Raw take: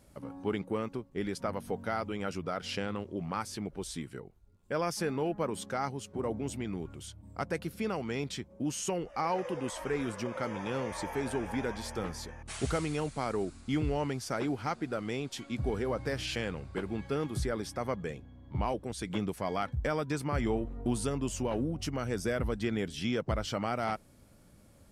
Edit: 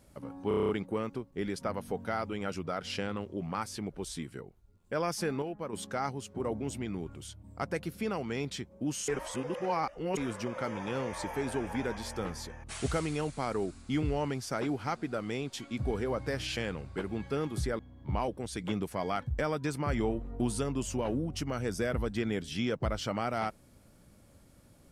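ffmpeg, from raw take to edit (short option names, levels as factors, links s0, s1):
-filter_complex "[0:a]asplit=13[s0][s1][s2][s3][s4][s5][s6][s7][s8][s9][s10][s11][s12];[s0]atrim=end=0.512[s13];[s1]atrim=start=0.478:end=0.512[s14];[s2]atrim=start=0.478:end=0.512[s15];[s3]atrim=start=0.478:end=0.512[s16];[s4]atrim=start=0.478:end=0.512[s17];[s5]atrim=start=0.478:end=0.512[s18];[s6]atrim=start=0.478:end=0.512[s19];[s7]atrim=start=0.478:end=5.212[s20];[s8]atrim=start=5.208:end=5.522,asetpts=PTS-STARTPTS,volume=0.501[s21];[s9]atrim=start=5.518:end=8.872[s22];[s10]atrim=start=8.868:end=9.962,asetpts=PTS-STARTPTS,areverse[s23];[s11]atrim=start=9.958:end=17.582[s24];[s12]atrim=start=18.248[s25];[s13][s14]acrossfade=d=0.004:c1=hsin:c2=hsin[s26];[s26][s15]acrossfade=d=0.004:c1=hsin:c2=hsin[s27];[s27][s16]acrossfade=d=0.004:c1=hsin:c2=hsin[s28];[s28][s17]acrossfade=d=0.004:c1=hsin:c2=hsin[s29];[s29][s18]acrossfade=d=0.004:c1=hsin:c2=hsin[s30];[s30][s19]acrossfade=d=0.004:c1=hsin:c2=hsin[s31];[s31][s20]acrossfade=d=0.004:c1=hsin:c2=hsin[s32];[s32][s21]acrossfade=d=0.004:c1=hsin:c2=hsin[s33];[s33][s22]acrossfade=d=0.004:c1=hsin:c2=hsin[s34];[s34][s23]acrossfade=d=0.004:c1=hsin:c2=hsin[s35];[s35][s24]acrossfade=d=0.004:c1=hsin:c2=hsin[s36];[s36][s25]acrossfade=d=0.004:c1=hsin:c2=hsin"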